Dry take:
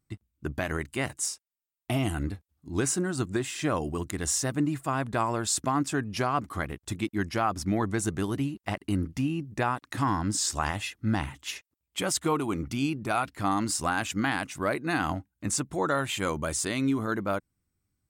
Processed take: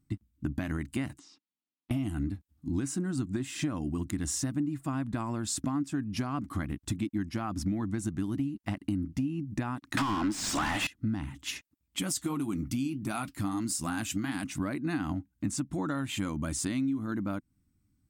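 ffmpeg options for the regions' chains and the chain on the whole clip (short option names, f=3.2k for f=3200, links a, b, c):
-filter_complex "[0:a]asettb=1/sr,asplit=3[a][b][c];[a]atrim=end=1.194[d];[b]atrim=start=1.19:end=1.91,asetpts=PTS-STARTPTS,afade=t=in:d=0.004:c=qsin,afade=t=out:st=0.716:d=0.004:c=qsin,highpass=200,equalizer=f=200:t=q:w=4:g=5,equalizer=f=300:t=q:w=4:g=4,equalizer=f=590:t=q:w=4:g=-8,equalizer=f=1.6k:t=q:w=4:g=-7,equalizer=f=2.2k:t=q:w=4:g=-3,lowpass=f=4.2k:w=0.5412,lowpass=f=4.2k:w=1.3066,acompressor=threshold=-53dB:ratio=6:attack=3.2:release=140:knee=1:detection=peak[e];[c]atrim=start=1.906[f];[d][e]acrossfade=d=0.004:c1=hsin:c2=qsin[g];[g][f]acrossfade=d=0.004:c1=qsin:c2=hsin,asettb=1/sr,asplit=3[h][i][j];[h]atrim=end=9.974[k];[i]atrim=start=9.97:end=10.87,asetpts=PTS-STARTPTS,afade=t=in:d=0.004:c=qsin,afade=t=out:st=0.896:d=0.004:c=qsin,bass=f=250:g=-14,treble=f=4k:g=2,acontrast=85,asplit=2[l][m];[m]highpass=f=720:p=1,volume=31dB,asoftclip=type=tanh:threshold=-6.5dB[n];[l][n]amix=inputs=2:normalize=0,lowpass=f=2.6k:p=1,volume=-6dB[o];[j]atrim=start=10.866[p];[k][o]acrossfade=d=0.004:c1=hsin:c2=qsin[q];[q][p]acrossfade=d=0.004:c1=qsin:c2=hsin,asettb=1/sr,asplit=3[r][s][t];[r]atrim=end=11.994[u];[s]atrim=start=11.99:end=14.44,asetpts=PTS-STARTPTS,afade=t=in:d=0.004:c=qsin,afade=t=out:st=2.446:d=0.004:c=qsin,highshelf=f=5.7k:g=12,flanger=delay=4.1:depth=5.4:regen=-58:speed=1.7:shape=triangular[v];[t]atrim=start=14.436[w];[u][v]acrossfade=d=0.004:c1=hsin:c2=qsin[x];[x][w]acrossfade=d=0.004:c1=qsin:c2=hsin,lowshelf=f=350:t=q:w=3:g=6.5,acompressor=threshold=-29dB:ratio=6"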